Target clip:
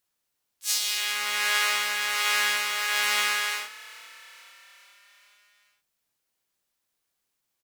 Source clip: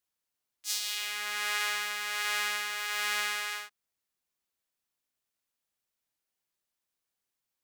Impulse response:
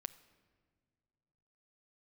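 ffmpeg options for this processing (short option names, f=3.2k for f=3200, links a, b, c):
-filter_complex "[0:a]asplit=3[a][b][c];[b]asetrate=33038,aresample=44100,atempo=1.33484,volume=-16dB[d];[c]asetrate=58866,aresample=44100,atempo=0.749154,volume=-5dB[e];[a][d][e]amix=inputs=3:normalize=0,asplit=2[f][g];[g]asplit=5[h][i][j][k][l];[h]adelay=427,afreqshift=37,volume=-20dB[m];[i]adelay=854,afreqshift=74,volume=-24.2dB[n];[j]adelay=1281,afreqshift=111,volume=-28.3dB[o];[k]adelay=1708,afreqshift=148,volume=-32.5dB[p];[l]adelay=2135,afreqshift=185,volume=-36.6dB[q];[m][n][o][p][q]amix=inputs=5:normalize=0[r];[f][r]amix=inputs=2:normalize=0,volume=5.5dB"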